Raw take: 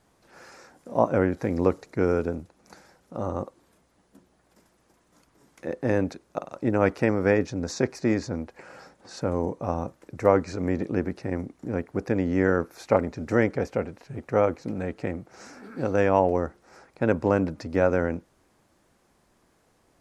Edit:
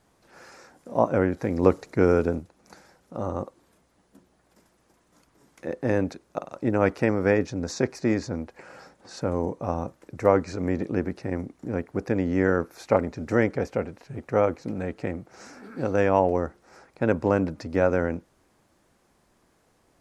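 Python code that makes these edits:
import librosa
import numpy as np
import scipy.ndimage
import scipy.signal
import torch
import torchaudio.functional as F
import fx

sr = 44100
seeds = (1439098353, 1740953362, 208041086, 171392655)

y = fx.edit(x, sr, fx.clip_gain(start_s=1.63, length_s=0.76, db=3.5), tone=tone)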